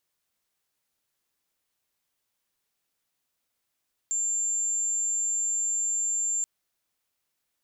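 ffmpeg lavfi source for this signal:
ffmpeg -f lavfi -i "aevalsrc='0.0596*sin(2*PI*7300*t)':duration=2.33:sample_rate=44100" out.wav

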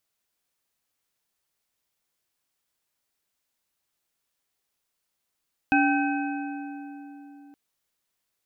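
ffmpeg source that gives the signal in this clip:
ffmpeg -f lavfi -i "aevalsrc='0.1*pow(10,-3*t/3.99)*sin(2*PI*285*t)+0.0841*pow(10,-3*t/2.943)*sin(2*PI*785.7*t)+0.0708*pow(10,-3*t/2.405)*sin(2*PI*1540.1*t)+0.0596*pow(10,-3*t/2.069)*sin(2*PI*2545.9*t)':duration=1.82:sample_rate=44100" out.wav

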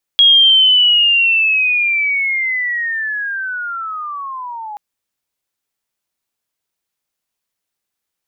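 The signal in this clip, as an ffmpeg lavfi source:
ffmpeg -f lavfi -i "aevalsrc='pow(10,(-5-20*t/4.58)/20)*sin(2*PI*(3300*t-2480*t*t/(2*4.58)))':duration=4.58:sample_rate=44100" out.wav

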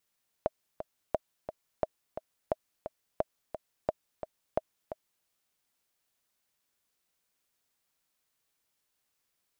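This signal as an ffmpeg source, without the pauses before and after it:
ffmpeg -f lavfi -i "aevalsrc='pow(10,(-13.5-10*gte(mod(t,2*60/175),60/175))/20)*sin(2*PI*630*mod(t,60/175))*exp(-6.91*mod(t,60/175)/0.03)':duration=4.8:sample_rate=44100" out.wav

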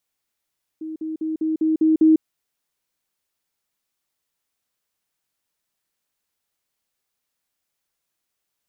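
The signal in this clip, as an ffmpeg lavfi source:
ffmpeg -f lavfi -i "aevalsrc='pow(10,(-28+3*floor(t/0.2))/20)*sin(2*PI*316*t)*clip(min(mod(t,0.2),0.15-mod(t,0.2))/0.005,0,1)':duration=1.4:sample_rate=44100" out.wav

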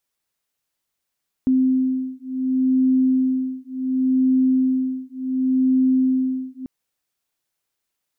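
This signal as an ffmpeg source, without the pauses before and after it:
ffmpeg -f lavfi -i "aevalsrc='0.106*(sin(2*PI*259*t)+sin(2*PI*259.69*t))':duration=5.19:sample_rate=44100" out.wav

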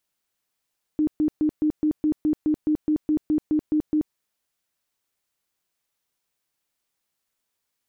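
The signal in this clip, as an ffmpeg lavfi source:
ffmpeg -f lavfi -i "aevalsrc='0.133*sin(2*PI*305*mod(t,0.21))*lt(mod(t,0.21),25/305)':duration=3.15:sample_rate=44100" out.wav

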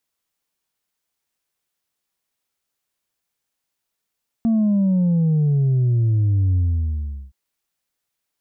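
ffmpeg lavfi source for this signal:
ffmpeg -f lavfi -i "aevalsrc='0.178*clip((2.87-t)/0.76,0,1)*tanh(1.26*sin(2*PI*230*2.87/log(65/230)*(exp(log(65/230)*t/2.87)-1)))/tanh(1.26)':duration=2.87:sample_rate=44100" out.wav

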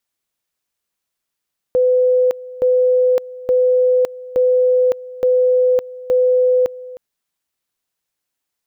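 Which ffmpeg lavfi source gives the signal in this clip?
ffmpeg -f lavfi -i "aevalsrc='pow(10,(-10.5-19*gte(mod(t,0.87),0.56))/20)*sin(2*PI*504*t)':duration=5.22:sample_rate=44100" out.wav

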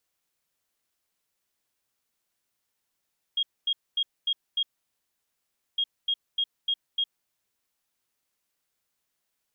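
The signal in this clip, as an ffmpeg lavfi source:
ffmpeg -f lavfi -i "aevalsrc='0.075*sin(2*PI*3260*t)*clip(min(mod(mod(t,2.41),0.3),0.06-mod(mod(t,2.41),0.3))/0.005,0,1)*lt(mod(t,2.41),1.5)':duration=4.82:sample_rate=44100" out.wav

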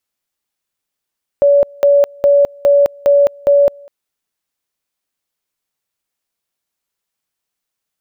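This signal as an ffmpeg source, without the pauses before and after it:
ffmpeg -f lavfi -i "aevalsrc='pow(10,(-6-28.5*gte(mod(t,0.41),0.21))/20)*sin(2*PI*569*t)':duration=2.46:sample_rate=44100" out.wav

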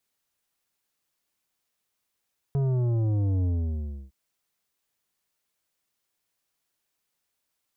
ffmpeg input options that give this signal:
ffmpeg -f lavfi -i "aevalsrc='0.0708*clip((1.56-t)/0.67,0,1)*tanh(3.16*sin(2*PI*140*1.56/log(65/140)*(exp(log(65/140)*t/1.56)-1)))/tanh(3.16)':duration=1.56:sample_rate=44100" out.wav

